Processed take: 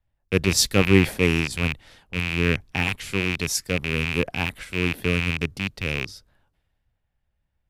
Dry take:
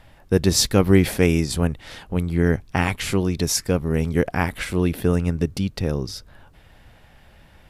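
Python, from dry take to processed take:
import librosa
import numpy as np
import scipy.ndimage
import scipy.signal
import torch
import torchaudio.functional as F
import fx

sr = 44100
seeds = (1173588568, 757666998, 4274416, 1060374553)

y = fx.rattle_buzz(x, sr, strikes_db=-24.0, level_db=-7.0)
y = fx.band_widen(y, sr, depth_pct=70)
y = F.gain(torch.from_numpy(y), -5.0).numpy()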